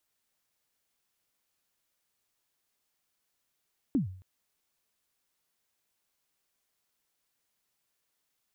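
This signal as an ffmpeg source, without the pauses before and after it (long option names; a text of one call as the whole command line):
ffmpeg -f lavfi -i "aevalsrc='0.0944*pow(10,-3*t/0.52)*sin(2*PI*(310*0.123/log(93/310)*(exp(log(93/310)*min(t,0.123)/0.123)-1)+93*max(t-0.123,0)))':duration=0.27:sample_rate=44100" out.wav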